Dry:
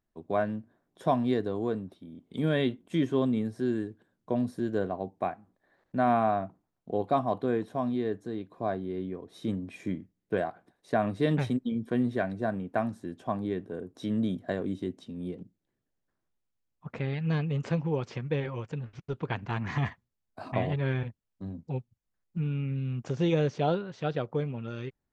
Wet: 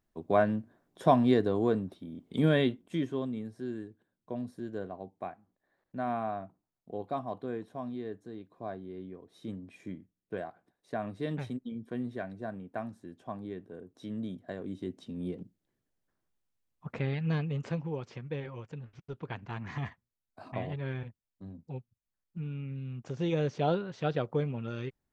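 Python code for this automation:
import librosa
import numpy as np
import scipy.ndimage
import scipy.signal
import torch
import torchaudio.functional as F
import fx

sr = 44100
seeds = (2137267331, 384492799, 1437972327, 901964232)

y = fx.gain(x, sr, db=fx.line((2.43, 3.0), (3.28, -8.5), (14.55, -8.5), (15.12, 0.0), (17.06, 0.0), (18.0, -7.0), (22.99, -7.0), (23.85, 0.0)))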